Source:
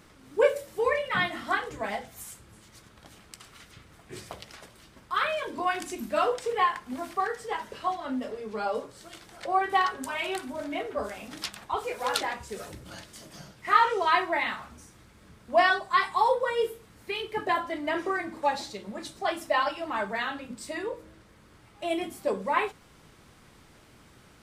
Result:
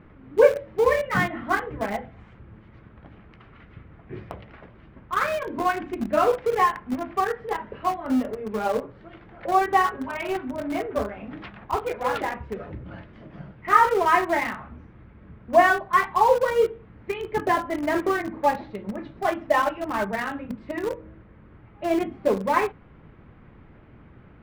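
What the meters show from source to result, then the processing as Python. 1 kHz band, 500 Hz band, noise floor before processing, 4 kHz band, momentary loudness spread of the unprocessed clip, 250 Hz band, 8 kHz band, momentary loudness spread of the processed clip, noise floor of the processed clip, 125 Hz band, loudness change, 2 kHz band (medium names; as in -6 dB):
+4.0 dB, +6.0 dB, -56 dBFS, -4.5 dB, 20 LU, +8.0 dB, -1.0 dB, 19 LU, -50 dBFS, +9.5 dB, +4.5 dB, +2.5 dB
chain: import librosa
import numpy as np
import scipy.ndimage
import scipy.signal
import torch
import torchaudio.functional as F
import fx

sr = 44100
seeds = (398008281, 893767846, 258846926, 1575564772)

p1 = scipy.signal.sosfilt(scipy.signal.butter(4, 2400.0, 'lowpass', fs=sr, output='sos'), x)
p2 = fx.low_shelf(p1, sr, hz=410.0, db=9.5)
p3 = np.where(np.abs(p2) >= 10.0 ** (-24.0 / 20.0), p2, 0.0)
y = p2 + F.gain(torch.from_numpy(p3), -8.0).numpy()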